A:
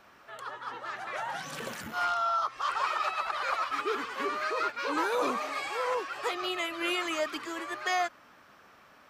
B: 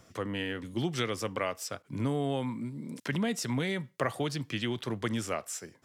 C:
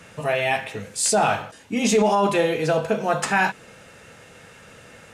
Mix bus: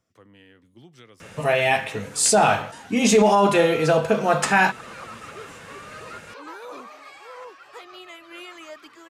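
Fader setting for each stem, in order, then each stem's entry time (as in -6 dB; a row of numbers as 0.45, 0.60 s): -9.5, -17.5, +2.5 dB; 1.50, 0.00, 1.20 s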